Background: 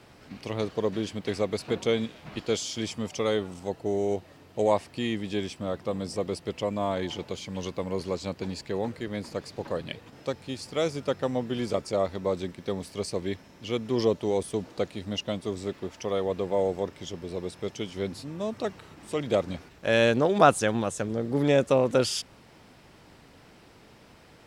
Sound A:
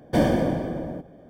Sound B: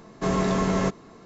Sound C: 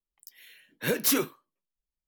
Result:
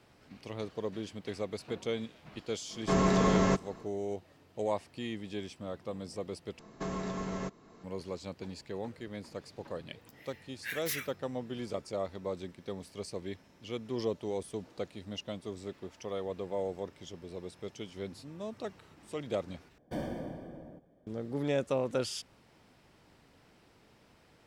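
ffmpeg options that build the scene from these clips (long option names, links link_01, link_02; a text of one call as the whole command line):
ffmpeg -i bed.wav -i cue0.wav -i cue1.wav -i cue2.wav -filter_complex "[2:a]asplit=2[link_01][link_02];[0:a]volume=-9dB[link_03];[link_02]alimiter=limit=-21dB:level=0:latency=1:release=393[link_04];[3:a]highpass=frequency=1900:width_type=q:width=4.7[link_05];[link_03]asplit=3[link_06][link_07][link_08];[link_06]atrim=end=6.594[link_09];[link_04]atrim=end=1.25,asetpts=PTS-STARTPTS,volume=-6.5dB[link_10];[link_07]atrim=start=7.836:end=19.784[link_11];[1:a]atrim=end=1.29,asetpts=PTS-STARTPTS,volume=-17dB[link_12];[link_08]atrim=start=21.066[link_13];[link_01]atrim=end=1.25,asetpts=PTS-STARTPTS,volume=-2.5dB,afade=type=in:duration=0.1,afade=type=out:start_time=1.15:duration=0.1,adelay=2660[link_14];[link_05]atrim=end=2.07,asetpts=PTS-STARTPTS,volume=-13dB,afade=type=in:duration=0.004:curve=hsin,afade=type=out:start_time=2.066:duration=0.004:curve=hsin,adelay=9820[link_15];[link_09][link_10]acrossfade=duration=0.004:curve1=hsin:curve2=hsin[link_16];[link_16][link_11]acrossfade=duration=0.004:curve1=hsin:curve2=hsin[link_17];[link_17][link_12]acrossfade=duration=0.004:curve1=hsin:curve2=hsin[link_18];[link_18][link_13]acrossfade=duration=0.004:curve1=hsin:curve2=hsin[link_19];[link_19][link_14][link_15]amix=inputs=3:normalize=0" out.wav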